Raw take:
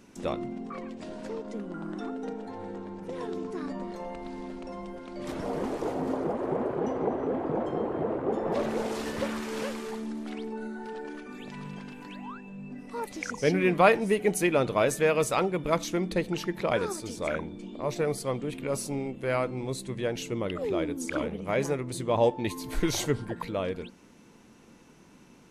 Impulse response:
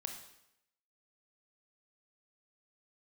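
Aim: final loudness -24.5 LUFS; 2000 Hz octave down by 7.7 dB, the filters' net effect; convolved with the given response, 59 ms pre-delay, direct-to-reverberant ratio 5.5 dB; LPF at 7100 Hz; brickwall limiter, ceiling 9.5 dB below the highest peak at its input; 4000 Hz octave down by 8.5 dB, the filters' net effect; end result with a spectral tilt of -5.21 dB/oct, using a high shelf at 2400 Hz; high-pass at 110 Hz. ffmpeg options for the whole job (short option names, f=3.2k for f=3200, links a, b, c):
-filter_complex "[0:a]highpass=110,lowpass=7.1k,equalizer=f=2k:t=o:g=-7,highshelf=f=2.4k:g=-3.5,equalizer=f=4k:t=o:g=-5,alimiter=limit=-18.5dB:level=0:latency=1,asplit=2[a][b];[1:a]atrim=start_sample=2205,adelay=59[c];[b][c]afir=irnorm=-1:irlink=0,volume=-4dB[d];[a][d]amix=inputs=2:normalize=0,volume=7.5dB"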